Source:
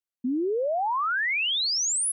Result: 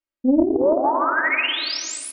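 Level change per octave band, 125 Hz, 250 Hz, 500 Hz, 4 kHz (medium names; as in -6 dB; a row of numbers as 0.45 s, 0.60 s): no reading, +11.0 dB, +8.0 dB, +0.5 dB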